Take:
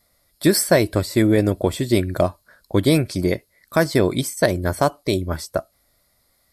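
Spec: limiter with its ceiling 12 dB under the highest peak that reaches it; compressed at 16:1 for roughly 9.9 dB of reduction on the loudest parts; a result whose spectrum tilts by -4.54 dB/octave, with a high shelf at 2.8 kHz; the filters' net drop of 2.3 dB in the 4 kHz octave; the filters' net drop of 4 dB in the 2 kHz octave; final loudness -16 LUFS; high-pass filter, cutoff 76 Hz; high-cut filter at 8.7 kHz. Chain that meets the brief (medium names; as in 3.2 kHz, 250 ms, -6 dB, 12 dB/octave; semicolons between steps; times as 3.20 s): high-pass 76 Hz; low-pass 8.7 kHz; peaking EQ 2 kHz -6.5 dB; treble shelf 2.8 kHz +9 dB; peaking EQ 4 kHz -9 dB; compression 16:1, threshold -21 dBFS; trim +15.5 dB; peak limiter -4 dBFS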